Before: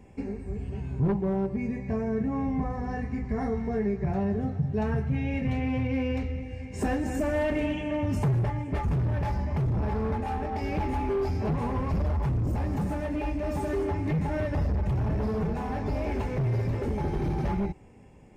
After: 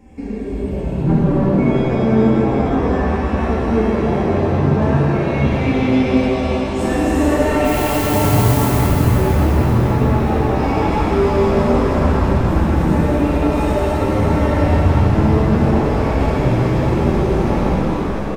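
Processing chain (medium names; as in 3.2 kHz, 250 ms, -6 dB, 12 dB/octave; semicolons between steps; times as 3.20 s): frequency-shifting echo 267 ms, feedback 61%, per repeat +130 Hz, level -9 dB; 7.64–8.65 s: added noise blue -38 dBFS; flange 0.17 Hz, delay 3.7 ms, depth 7.3 ms, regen +47%; pitch-shifted reverb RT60 3.5 s, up +7 st, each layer -8 dB, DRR -8 dB; trim +6.5 dB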